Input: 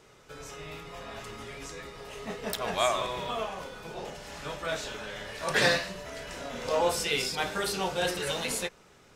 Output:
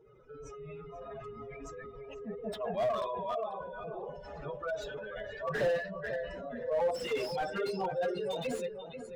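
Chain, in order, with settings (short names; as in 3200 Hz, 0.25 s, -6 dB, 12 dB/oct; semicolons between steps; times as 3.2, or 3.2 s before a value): spectral contrast raised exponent 2.8; on a send: darkening echo 0.488 s, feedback 34%, low-pass 2100 Hz, level -9 dB; on the sum: slew limiter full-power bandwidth 41 Hz; gain -2.5 dB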